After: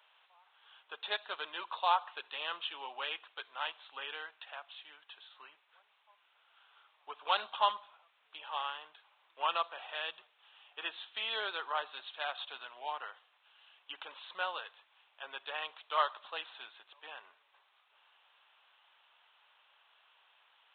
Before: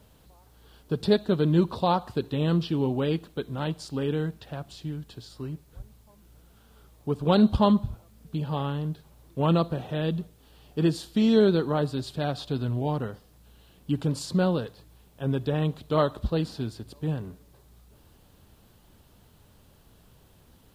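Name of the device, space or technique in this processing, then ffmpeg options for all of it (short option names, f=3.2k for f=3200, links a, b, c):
musical greeting card: -af "aresample=8000,aresample=44100,highpass=f=890:w=0.5412,highpass=f=890:w=1.3066,equalizer=f=2.6k:t=o:w=0.49:g=4"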